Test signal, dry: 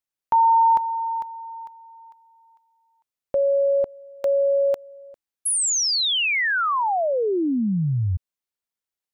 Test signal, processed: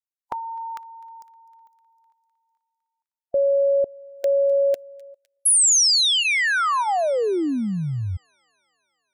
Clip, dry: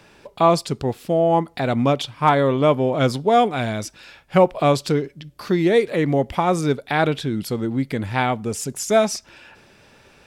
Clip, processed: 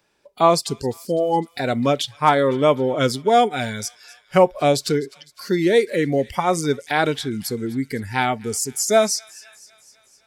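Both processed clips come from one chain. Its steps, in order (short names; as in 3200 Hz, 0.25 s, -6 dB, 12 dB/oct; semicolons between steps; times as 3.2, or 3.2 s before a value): spectral noise reduction 17 dB; tone controls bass -5 dB, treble +5 dB; notch 2700 Hz, Q 27; thin delay 0.254 s, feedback 62%, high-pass 1800 Hz, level -20 dB; gain +1 dB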